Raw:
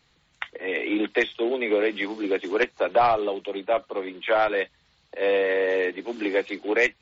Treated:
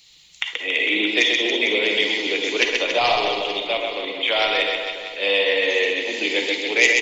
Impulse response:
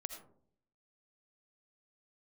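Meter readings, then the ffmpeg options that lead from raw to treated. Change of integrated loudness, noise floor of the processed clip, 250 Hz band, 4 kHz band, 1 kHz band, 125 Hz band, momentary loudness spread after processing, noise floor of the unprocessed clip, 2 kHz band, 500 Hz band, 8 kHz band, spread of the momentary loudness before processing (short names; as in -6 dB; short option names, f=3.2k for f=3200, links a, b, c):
+5.0 dB, -50 dBFS, 0.0 dB, +17.5 dB, +0.5 dB, -0.5 dB, 7 LU, -65 dBFS, +8.5 dB, 0.0 dB, n/a, 9 LU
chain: -filter_complex "[0:a]aecho=1:1:130|279.5|451.4|649.1|876.5:0.631|0.398|0.251|0.158|0.1,aexciter=amount=8:drive=5.6:freq=2.3k[a];[1:a]atrim=start_sample=2205,afade=t=out:st=0.22:d=0.01,atrim=end_sample=10143,asetrate=66150,aresample=44100[b];[a][b]afir=irnorm=-1:irlink=0,volume=3.5dB"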